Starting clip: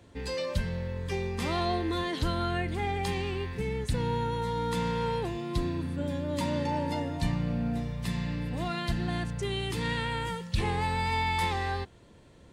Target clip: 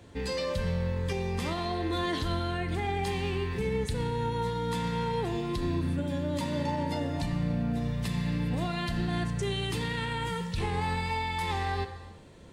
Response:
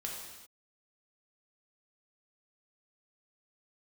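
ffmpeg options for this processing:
-filter_complex "[0:a]alimiter=level_in=1.26:limit=0.0631:level=0:latency=1:release=86,volume=0.794,asplit=2[s0][s1];[1:a]atrim=start_sample=2205[s2];[s1][s2]afir=irnorm=-1:irlink=0,volume=0.668[s3];[s0][s3]amix=inputs=2:normalize=0"

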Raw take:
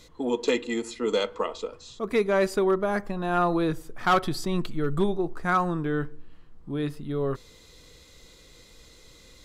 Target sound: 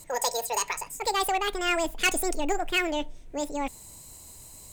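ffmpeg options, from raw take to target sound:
-filter_complex "[0:a]equalizer=f=500:t=o:w=1:g=-5,equalizer=f=4000:t=o:w=1:g=8,equalizer=f=8000:t=o:w=1:g=5,asplit=2[s0][s1];[s1]aeval=exprs='0.0631*(abs(mod(val(0)/0.0631+3,4)-2)-1)':c=same,volume=0.251[s2];[s0][s2]amix=inputs=2:normalize=0,asetrate=88200,aresample=44100,volume=0.841"

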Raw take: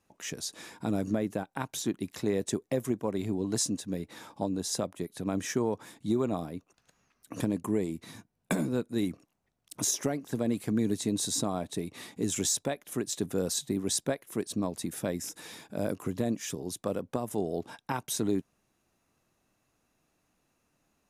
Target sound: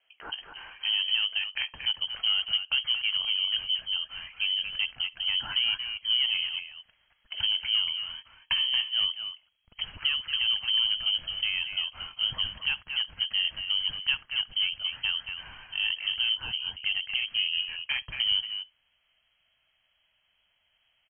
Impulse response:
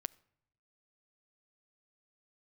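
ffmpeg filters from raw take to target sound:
-filter_complex "[0:a]acrossover=split=2000[s0][s1];[s1]asoftclip=type=tanh:threshold=0.0316[s2];[s0][s2]amix=inputs=2:normalize=0[s3];[1:a]atrim=start_sample=2205,atrim=end_sample=3528[s4];[s3][s4]afir=irnorm=-1:irlink=0,asplit=2[s5][s6];[s6]asoftclip=type=hard:threshold=0.0398,volume=0.708[s7];[s5][s7]amix=inputs=2:normalize=0,asplit=2[s8][s9];[s9]adelay=230,highpass=300,lowpass=3400,asoftclip=type=hard:threshold=0.0668,volume=0.501[s10];[s8][s10]amix=inputs=2:normalize=0,lowpass=f=2800:t=q:w=0.5098,lowpass=f=2800:t=q:w=0.6013,lowpass=f=2800:t=q:w=0.9,lowpass=f=2800:t=q:w=2.563,afreqshift=-3300,asubboost=boost=9.5:cutoff=130,volume=1.12"

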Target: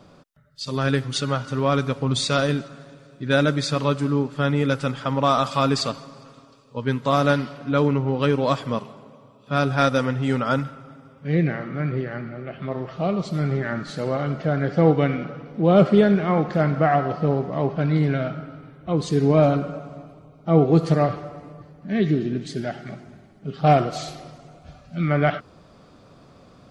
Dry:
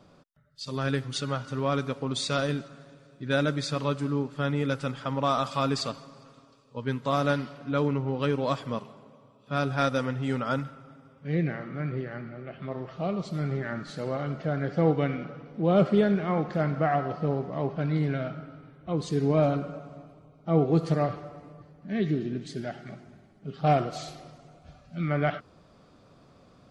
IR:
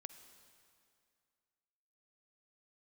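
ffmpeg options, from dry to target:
-filter_complex "[0:a]asettb=1/sr,asplit=3[s0][s1][s2];[s0]atrim=end=1.694[s3];[s1]atrim=start=1.69:end=2.25,asetpts=PTS-STARTPTS,afade=t=in:d=0.004:c=qsin,afade=t=out:st=0.556:d=0.004:c=qsin,asubboost=boost=12:cutoff=190[s4];[s2]atrim=start=2.246[s5];[s3][s4]acrossfade=d=0.004:c1=hsin:c2=qsin[s6];[s6][s5]acrossfade=d=0.004:c1=qsin:c2=hsin,volume=2.11"

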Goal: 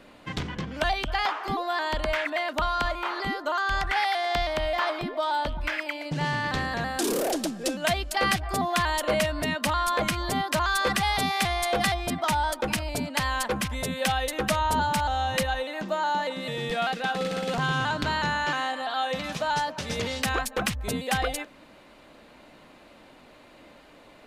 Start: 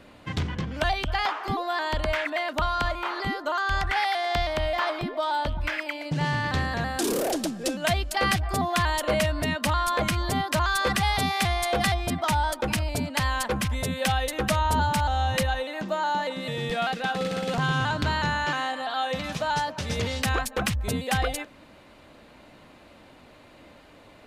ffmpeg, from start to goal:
-af "equalizer=f=88:t=o:w=1.2:g=-8.5"

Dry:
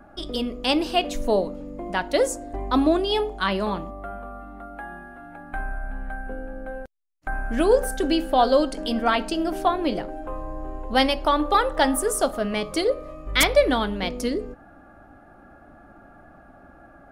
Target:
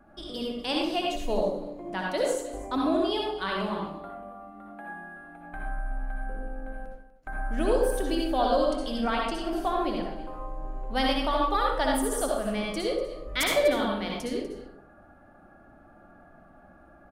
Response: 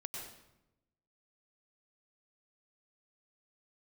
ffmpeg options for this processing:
-filter_complex "[0:a]aecho=1:1:245:0.178[s0];[1:a]atrim=start_sample=2205,afade=t=out:st=0.4:d=0.01,atrim=end_sample=18081,asetrate=70560,aresample=44100[s1];[s0][s1]afir=irnorm=-1:irlink=0"

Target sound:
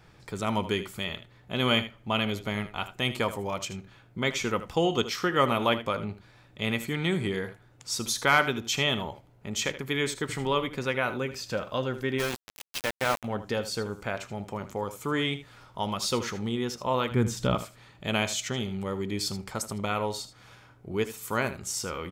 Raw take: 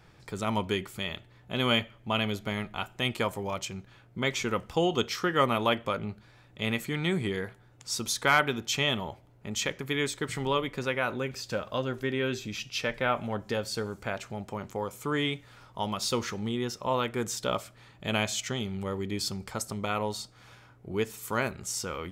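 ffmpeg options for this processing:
-filter_complex "[0:a]asettb=1/sr,asplit=3[s0][s1][s2];[s0]atrim=end=17.114[s3];[s1]atrim=start=17.11:end=17.55,asetpts=PTS-STARTPTS,afade=t=in:d=0.004:c=qsin,afade=t=out:st=0.436:d=0.004:c=qsin,bass=f=250:g=13,treble=f=4000:g=-5[s4];[s2]atrim=start=17.546[s5];[s3][s4]acrossfade=d=0.004:c1=hsin:c2=qsin[s6];[s6][s5]acrossfade=d=0.004:c1=qsin:c2=hsin,aecho=1:1:78:0.211,asplit=3[s7][s8][s9];[s7]afade=t=out:st=12.18:d=0.02[s10];[s8]aeval=exprs='val(0)*gte(abs(val(0)),0.0422)':c=same,afade=t=in:st=12.18:d=0.02,afade=t=out:st=13.23:d=0.02[s11];[s9]afade=t=in:st=13.23:d=0.02[s12];[s10][s11][s12]amix=inputs=3:normalize=0,volume=1.12"

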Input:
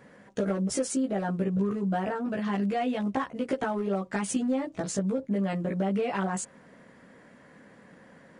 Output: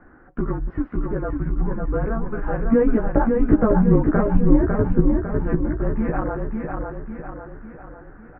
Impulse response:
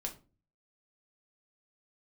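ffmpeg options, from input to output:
-filter_complex "[0:a]asettb=1/sr,asplit=3[s0][s1][s2];[s0]atrim=end=2.644[s3];[s1]atrim=start=2.64:end=5.02,asetpts=PTS-STARTPTS,afade=t=in:d=0.004:c=qsin,afade=t=out:st=2.376:d=0.004:c=qsin,equalizer=f=430:t=o:w=1.8:g=11[s4];[s2]atrim=start=5.016[s5];[s3][s4]acrossfade=d=0.004:c1=hsin:c2=qsin[s6];[s6][s5]acrossfade=d=0.004:c1=qsin:c2=hsin,aecho=1:1:551|1102|1653|2204|2755|3306:0.631|0.315|0.158|0.0789|0.0394|0.0197,highpass=f=170:t=q:w=0.5412,highpass=f=170:t=q:w=1.307,lowpass=f=2000:t=q:w=0.5176,lowpass=f=2000:t=q:w=0.7071,lowpass=f=2000:t=q:w=1.932,afreqshift=-230,volume=1.78"

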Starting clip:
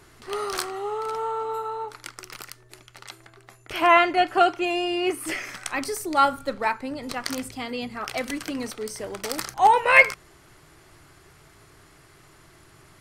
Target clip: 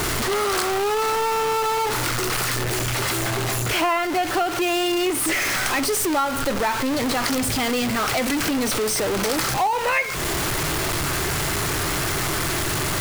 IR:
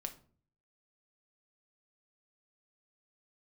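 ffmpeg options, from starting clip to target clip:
-af "aeval=exprs='val(0)+0.5*0.126*sgn(val(0))':c=same,acompressor=threshold=0.112:ratio=6"

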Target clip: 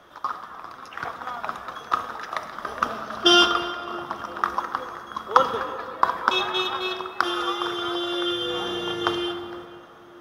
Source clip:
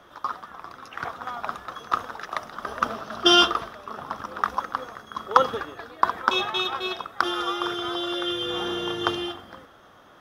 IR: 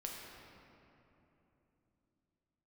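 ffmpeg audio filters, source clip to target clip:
-filter_complex "[0:a]asplit=2[s0][s1];[1:a]atrim=start_sample=2205,lowshelf=f=220:g=-7.5[s2];[s1][s2]afir=irnorm=-1:irlink=0,volume=0.891[s3];[s0][s3]amix=inputs=2:normalize=0,volume=0.708"

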